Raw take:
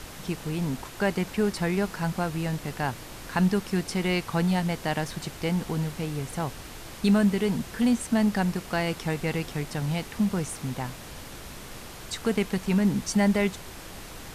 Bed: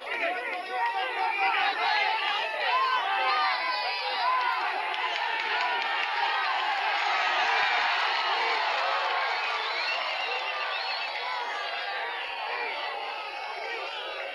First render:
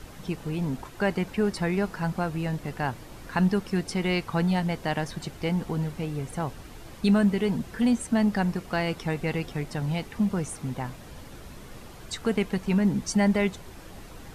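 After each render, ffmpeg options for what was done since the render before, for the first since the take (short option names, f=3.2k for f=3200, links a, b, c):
-af "afftdn=nr=8:nf=-42"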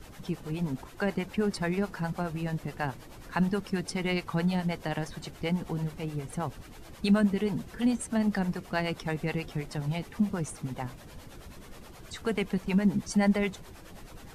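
-filter_complex "[0:a]acrossover=split=420[a][b];[a]aeval=exprs='val(0)*(1-0.7/2+0.7/2*cos(2*PI*9.4*n/s))':c=same[c];[b]aeval=exprs='val(0)*(1-0.7/2-0.7/2*cos(2*PI*9.4*n/s))':c=same[d];[c][d]amix=inputs=2:normalize=0"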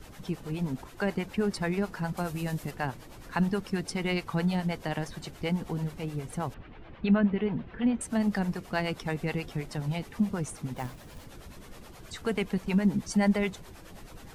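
-filter_complex "[0:a]asettb=1/sr,asplit=3[a][b][c];[a]atrim=end=2.174[d];[b]atrim=start=2.17:end=2.71,asetpts=PTS-STARTPTS,afade=t=in:d=0.004:c=qsin,afade=t=out:st=0.536:d=0.004:c=qsin,highshelf=f=5.3k:g=11.5[e];[c]atrim=start=2.706[f];[d][e]acrossfade=d=0.004:c1=hsin:c2=qsin[g];[g][f]acrossfade=d=0.004:c1=qsin:c2=hsin,asettb=1/sr,asplit=3[h][i][j];[h]atrim=end=6.544[k];[i]atrim=start=6.54:end=8.01,asetpts=PTS-STARTPTS,afade=t=in:d=0.004:c=qsin,afade=t=out:st=1.466:d=0.004:c=qsin,lowpass=f=3k:w=0.5412,lowpass=f=3k:w=1.3066[l];[j]atrim=start=8.006[m];[k][l]acrossfade=d=0.004:c1=hsin:c2=qsin[n];[n][m]acrossfade=d=0.004:c1=qsin:c2=hsin,asettb=1/sr,asplit=3[o][p][q];[o]atrim=end=10.764[r];[p]atrim=start=10.76:end=11.25,asetpts=PTS-STARTPTS,afade=t=in:d=0.004:c=qsin,afade=t=out:st=0.486:d=0.004:c=qsin,acrusher=bits=4:mode=log:mix=0:aa=0.000001[s];[q]atrim=start=11.246[t];[r][s]acrossfade=d=0.004:c1=hsin:c2=qsin[u];[u][t]acrossfade=d=0.004:c1=qsin:c2=hsin"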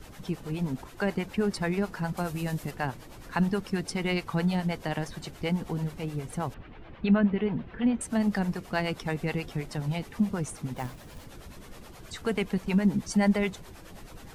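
-af "volume=1dB"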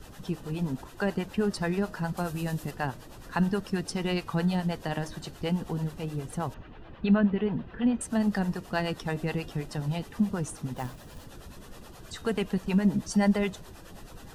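-af "bandreject=f=2.2k:w=6.5,bandreject=f=311.3:t=h:w=4,bandreject=f=622.6:t=h:w=4,bandreject=f=933.9:t=h:w=4,bandreject=f=1.2452k:t=h:w=4,bandreject=f=1.5565k:t=h:w=4,bandreject=f=1.8678k:t=h:w=4,bandreject=f=2.1791k:t=h:w=4,bandreject=f=2.4904k:t=h:w=4,bandreject=f=2.8017k:t=h:w=4,bandreject=f=3.113k:t=h:w=4,bandreject=f=3.4243k:t=h:w=4,bandreject=f=3.7356k:t=h:w=4,bandreject=f=4.0469k:t=h:w=4,bandreject=f=4.3582k:t=h:w=4,bandreject=f=4.6695k:t=h:w=4,bandreject=f=4.9808k:t=h:w=4,bandreject=f=5.2921k:t=h:w=4,bandreject=f=5.6034k:t=h:w=4,bandreject=f=5.9147k:t=h:w=4,bandreject=f=6.226k:t=h:w=4,bandreject=f=6.5373k:t=h:w=4"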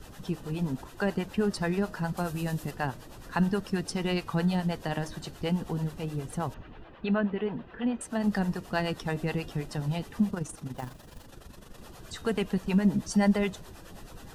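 -filter_complex "[0:a]asettb=1/sr,asplit=3[a][b][c];[a]atrim=end=6.844[d];[b]atrim=start=6.84:end=8.24,asetpts=PTS-STARTPTS,afade=t=in:d=0.004:c=qsin,afade=t=out:st=1.396:d=0.004:c=qsin,bass=f=250:g=-8,treble=f=4k:g=-4[e];[c]atrim=start=8.236[f];[d][e]acrossfade=d=0.004:c1=hsin:c2=qsin[g];[g][f]acrossfade=d=0.004:c1=qsin:c2=hsin,asplit=3[h][i][j];[h]afade=t=out:st=10.3:d=0.02[k];[i]tremolo=f=24:d=0.621,afade=t=in:st=10.3:d=0.02,afade=t=out:st=11.78:d=0.02[l];[j]afade=t=in:st=11.78:d=0.02[m];[k][l][m]amix=inputs=3:normalize=0"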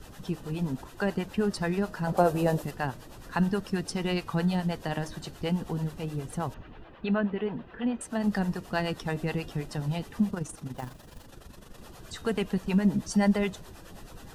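-filter_complex "[0:a]asettb=1/sr,asplit=3[a][b][c];[a]atrim=end=2.074[d];[b]atrim=start=2.07:end=2.62,asetpts=PTS-STARTPTS,afade=t=in:d=0.004:c=qsin,afade=t=out:st=0.546:d=0.004:c=qsin,equalizer=f=560:w=0.81:g=14.5[e];[c]atrim=start=2.616[f];[d][e]acrossfade=d=0.004:c1=hsin:c2=qsin[g];[g][f]acrossfade=d=0.004:c1=qsin:c2=hsin"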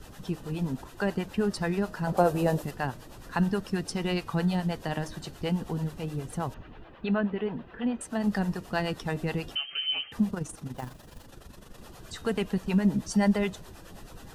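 -filter_complex "[0:a]asettb=1/sr,asplit=3[a][b][c];[a]atrim=end=9.554[d];[b]atrim=start=9.55:end=10.12,asetpts=PTS-STARTPTS,afade=t=in:d=0.004:c=qsin,afade=t=out:st=0.566:d=0.004:c=qsin,lowpass=f=2.7k:t=q:w=0.5098,lowpass=f=2.7k:t=q:w=0.6013,lowpass=f=2.7k:t=q:w=0.9,lowpass=f=2.7k:t=q:w=2.563,afreqshift=-3200[e];[c]atrim=start=10.116[f];[d][e]acrossfade=d=0.004:c1=hsin:c2=qsin[g];[g][f]acrossfade=d=0.004:c1=qsin:c2=hsin"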